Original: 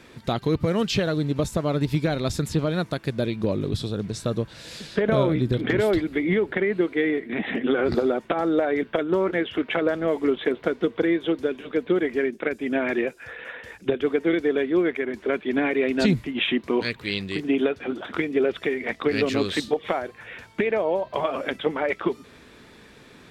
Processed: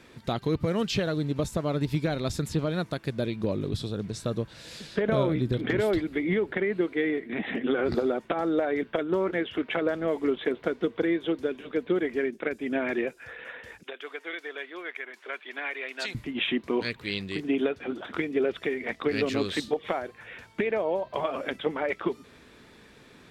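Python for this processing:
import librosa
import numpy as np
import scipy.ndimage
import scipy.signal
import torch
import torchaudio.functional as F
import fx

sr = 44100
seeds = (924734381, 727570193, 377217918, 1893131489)

y = fx.highpass(x, sr, hz=980.0, slope=12, at=(13.83, 16.15))
y = y * librosa.db_to_amplitude(-4.0)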